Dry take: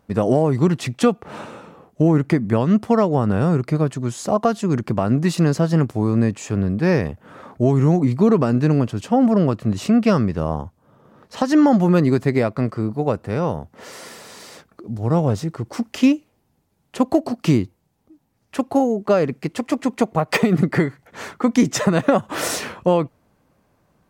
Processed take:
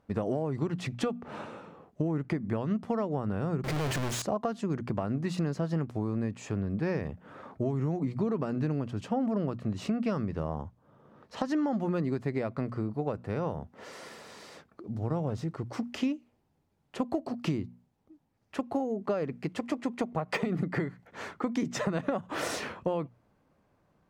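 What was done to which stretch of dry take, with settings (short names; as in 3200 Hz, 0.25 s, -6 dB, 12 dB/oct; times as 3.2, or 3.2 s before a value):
3.64–4.22 infinite clipping
whole clip: high shelf 6600 Hz -12 dB; notches 60/120/180/240 Hz; compressor 4:1, threshold -21 dBFS; gain -6.5 dB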